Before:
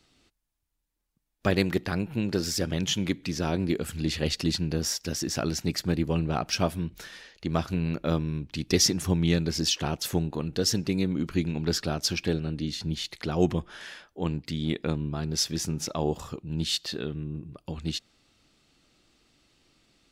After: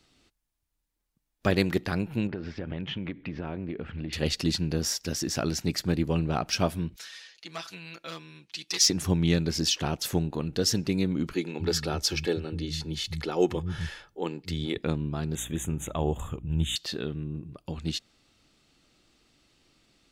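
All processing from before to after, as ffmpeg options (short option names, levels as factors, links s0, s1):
-filter_complex "[0:a]asettb=1/sr,asplit=3[s0][s1][s2];[s0]atrim=end=2.274[s3];[s1]atrim=start=2.27:end=4.13,asetpts=PTS-STARTPTS,afade=t=in:d=0.004:c=qsin,afade=t=out:st=1.856:d=0.004:c=qsin,lowpass=f=2700:w=0.5412,lowpass=f=2700:w=1.3066,acompressor=threshold=0.0355:ratio=12:attack=3.2:release=140:knee=1:detection=peak[s4];[s2]atrim=start=4.126[s5];[s3][s4]acrossfade=d=0.004:c1=hsin:c2=qsin[s6];[s6][s5]acrossfade=d=0.004:c1=qsin:c2=hsin,asettb=1/sr,asplit=3[s7][s8][s9];[s7]atrim=end=6.964[s10];[s8]atrim=start=6.96:end=8.9,asetpts=PTS-STARTPTS,afade=t=in:d=0.004:c=qsin,afade=t=out:st=1.936:d=0.004:c=qsin,volume=7.94,asoftclip=hard,volume=0.126,bandpass=f=5100:t=q:w=0.56,aecho=1:1:6:0.99,atrim=end_sample=85554[s11];[s9]atrim=start=8.896[s12];[s10][s11]acrossfade=d=0.004:c1=hsin:c2=qsin[s13];[s13][s12]acrossfade=d=0.004:c1=qsin:c2=hsin,asettb=1/sr,asplit=3[s14][s15][s16];[s14]atrim=end=11.334[s17];[s15]atrim=start=11.33:end=14.78,asetpts=PTS-STARTPTS,afade=t=in:d=0.004:c=qsin,afade=t=out:st=3.446:d=0.004:c=qsin,aecho=1:1:2.3:0.41,atrim=end_sample=152145,acrossover=split=180[s18][s19];[s18]adelay=260[s20];[s20][s19]amix=inputs=2:normalize=0,atrim=end_sample=152145[s21];[s16]atrim=start=14.776[s22];[s17][s21]acrossfade=d=0.004:c1=hsin:c2=qsin[s23];[s23][s22]acrossfade=d=0.004:c1=qsin:c2=hsin,asettb=1/sr,asplit=3[s24][s25][s26];[s24]atrim=end=15.354[s27];[s25]atrim=start=15.35:end=16.76,asetpts=PTS-STARTPTS,afade=t=in:d=0.004:c=qsin,afade=t=out:st=1.406:d=0.004:c=qsin,asubboost=boost=10.5:cutoff=110,aeval=exprs='val(0)+0.00562*(sin(2*PI*60*n/s)+sin(2*PI*2*60*n/s)/2+sin(2*PI*3*60*n/s)/3+sin(2*PI*4*60*n/s)/4+sin(2*PI*5*60*n/s)/5)':c=same,asuperstop=centerf=4900:order=12:qfactor=1.8[s28];[s26]atrim=start=16.756[s29];[s27][s28]acrossfade=d=0.004:c1=hsin:c2=qsin[s30];[s30][s29]acrossfade=d=0.004:c1=qsin:c2=hsin"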